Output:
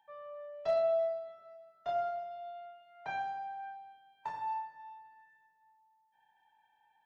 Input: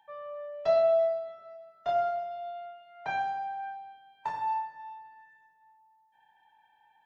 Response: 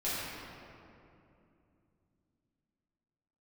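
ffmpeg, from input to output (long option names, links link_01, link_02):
-af "asoftclip=type=hard:threshold=-18dB,volume=-6dB"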